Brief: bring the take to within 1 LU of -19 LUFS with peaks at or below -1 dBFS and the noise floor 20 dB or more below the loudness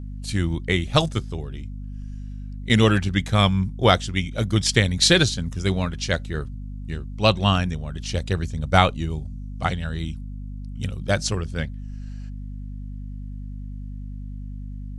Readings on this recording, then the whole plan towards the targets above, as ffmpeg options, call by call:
hum 50 Hz; highest harmonic 250 Hz; hum level -32 dBFS; loudness -22.5 LUFS; peak level -1.5 dBFS; loudness target -19.0 LUFS
-> -af "bandreject=f=50:t=h:w=4,bandreject=f=100:t=h:w=4,bandreject=f=150:t=h:w=4,bandreject=f=200:t=h:w=4,bandreject=f=250:t=h:w=4"
-af "volume=1.5,alimiter=limit=0.891:level=0:latency=1"

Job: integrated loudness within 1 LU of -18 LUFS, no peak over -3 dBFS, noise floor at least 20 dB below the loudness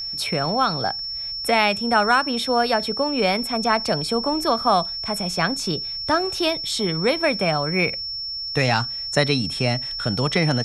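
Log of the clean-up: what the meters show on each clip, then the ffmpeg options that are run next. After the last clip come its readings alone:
steady tone 5.4 kHz; tone level -27 dBFS; loudness -21.5 LUFS; peak level -3.5 dBFS; loudness target -18.0 LUFS
-> -af "bandreject=f=5400:w=30"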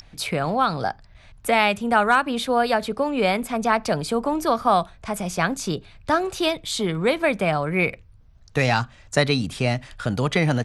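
steady tone not found; loudness -22.5 LUFS; peak level -4.0 dBFS; loudness target -18.0 LUFS
-> -af "volume=1.68,alimiter=limit=0.708:level=0:latency=1"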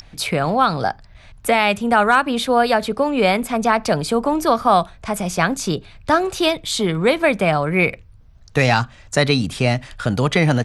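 loudness -18.5 LUFS; peak level -3.0 dBFS; noise floor -46 dBFS

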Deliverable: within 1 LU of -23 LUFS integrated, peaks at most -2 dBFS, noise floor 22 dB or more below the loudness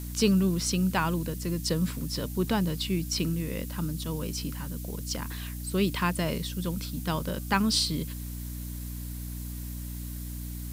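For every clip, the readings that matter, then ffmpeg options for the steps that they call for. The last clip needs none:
hum 60 Hz; highest harmonic 300 Hz; hum level -34 dBFS; noise floor -37 dBFS; noise floor target -52 dBFS; loudness -30.0 LUFS; peak level -9.5 dBFS; loudness target -23.0 LUFS
-> -af "bandreject=f=60:t=h:w=6,bandreject=f=120:t=h:w=6,bandreject=f=180:t=h:w=6,bandreject=f=240:t=h:w=6,bandreject=f=300:t=h:w=6"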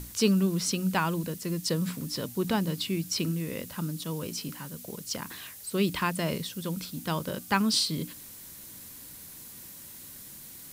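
hum not found; noise floor -46 dBFS; noise floor target -52 dBFS
-> -af "afftdn=nr=6:nf=-46"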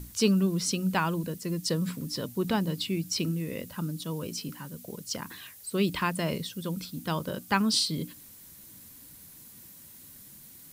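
noise floor -50 dBFS; noise floor target -52 dBFS
-> -af "afftdn=nr=6:nf=-50"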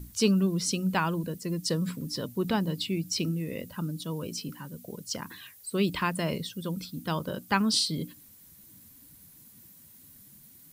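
noise floor -54 dBFS; loudness -30.0 LUFS; peak level -10.5 dBFS; loudness target -23.0 LUFS
-> -af "volume=2.24"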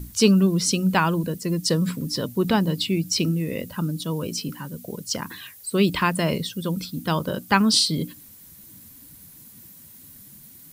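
loudness -23.0 LUFS; peak level -3.5 dBFS; noise floor -47 dBFS

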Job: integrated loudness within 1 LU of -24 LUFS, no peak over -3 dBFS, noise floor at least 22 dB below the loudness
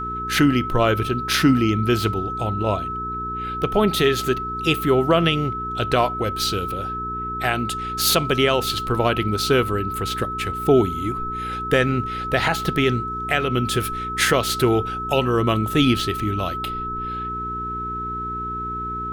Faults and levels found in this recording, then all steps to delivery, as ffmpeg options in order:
hum 60 Hz; highest harmonic 420 Hz; hum level -32 dBFS; steady tone 1.3 kHz; tone level -26 dBFS; loudness -21.5 LUFS; peak level -5.5 dBFS; loudness target -24.0 LUFS
-> -af "bandreject=f=60:t=h:w=4,bandreject=f=120:t=h:w=4,bandreject=f=180:t=h:w=4,bandreject=f=240:t=h:w=4,bandreject=f=300:t=h:w=4,bandreject=f=360:t=h:w=4,bandreject=f=420:t=h:w=4"
-af "bandreject=f=1300:w=30"
-af "volume=0.75"

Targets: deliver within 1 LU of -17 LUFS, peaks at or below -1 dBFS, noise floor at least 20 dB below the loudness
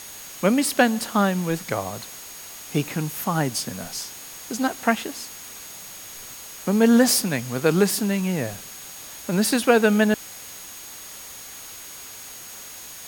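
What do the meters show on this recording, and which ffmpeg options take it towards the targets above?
steady tone 6.6 kHz; tone level -43 dBFS; noise floor -40 dBFS; noise floor target -42 dBFS; loudness -22.0 LUFS; peak level -2.5 dBFS; loudness target -17.0 LUFS
-> -af "bandreject=f=6600:w=30"
-af "afftdn=nr=6:nf=-40"
-af "volume=1.78,alimiter=limit=0.891:level=0:latency=1"

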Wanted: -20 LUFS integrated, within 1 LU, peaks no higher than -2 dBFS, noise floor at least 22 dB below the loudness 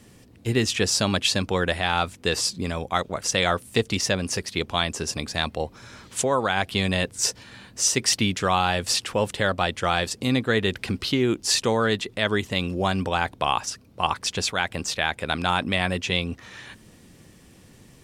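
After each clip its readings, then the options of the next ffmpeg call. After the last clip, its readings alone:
loudness -24.0 LUFS; peak level -6.5 dBFS; loudness target -20.0 LUFS
-> -af "volume=1.58"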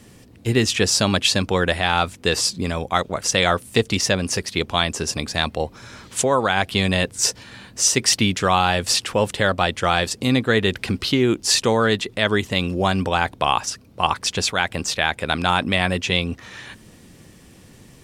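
loudness -20.0 LUFS; peak level -2.5 dBFS; noise floor -48 dBFS

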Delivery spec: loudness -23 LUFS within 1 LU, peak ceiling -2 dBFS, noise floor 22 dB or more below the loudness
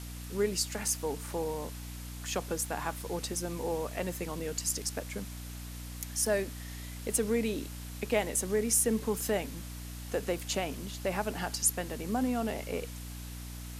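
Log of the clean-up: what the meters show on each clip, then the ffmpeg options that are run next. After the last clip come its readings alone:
hum 60 Hz; highest harmonic 300 Hz; hum level -40 dBFS; noise floor -42 dBFS; noise floor target -55 dBFS; loudness -33.0 LUFS; peak level -13.5 dBFS; loudness target -23.0 LUFS
-> -af "bandreject=f=60:t=h:w=4,bandreject=f=120:t=h:w=4,bandreject=f=180:t=h:w=4,bandreject=f=240:t=h:w=4,bandreject=f=300:t=h:w=4"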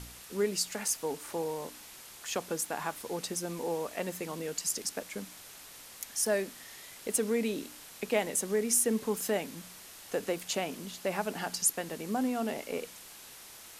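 hum not found; noise floor -50 dBFS; noise floor target -55 dBFS
-> -af "afftdn=nr=6:nf=-50"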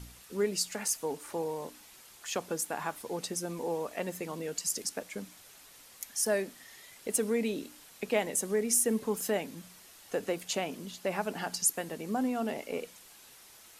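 noise floor -55 dBFS; loudness -33.0 LUFS; peak level -13.5 dBFS; loudness target -23.0 LUFS
-> -af "volume=3.16"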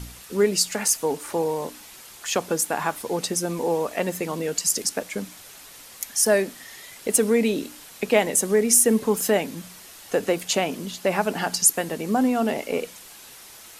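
loudness -23.0 LUFS; peak level -3.5 dBFS; noise floor -45 dBFS

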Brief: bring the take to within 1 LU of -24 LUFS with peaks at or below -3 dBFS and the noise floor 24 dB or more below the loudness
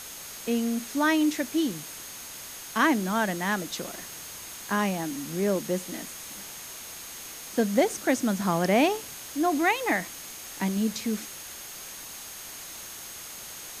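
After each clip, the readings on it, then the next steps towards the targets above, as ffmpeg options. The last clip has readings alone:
steady tone 6.5 kHz; tone level -46 dBFS; noise floor -41 dBFS; noise floor target -53 dBFS; loudness -29.0 LUFS; peak level -10.0 dBFS; loudness target -24.0 LUFS
-> -af "bandreject=f=6500:w=30"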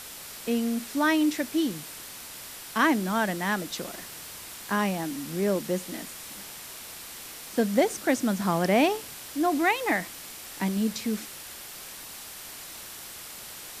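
steady tone not found; noise floor -42 dBFS; noise floor target -52 dBFS
-> -af "afftdn=nr=10:nf=-42"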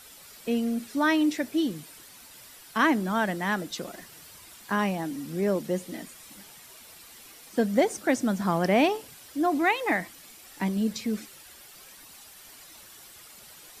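noise floor -50 dBFS; noise floor target -51 dBFS
-> -af "afftdn=nr=6:nf=-50"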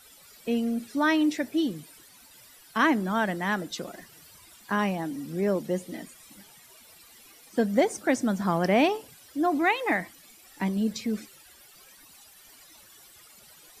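noise floor -54 dBFS; loudness -27.0 LUFS; peak level -10.0 dBFS; loudness target -24.0 LUFS
-> -af "volume=1.41"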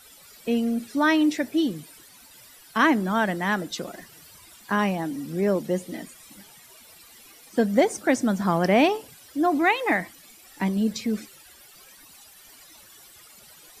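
loudness -24.0 LUFS; peak level -7.0 dBFS; noise floor -51 dBFS

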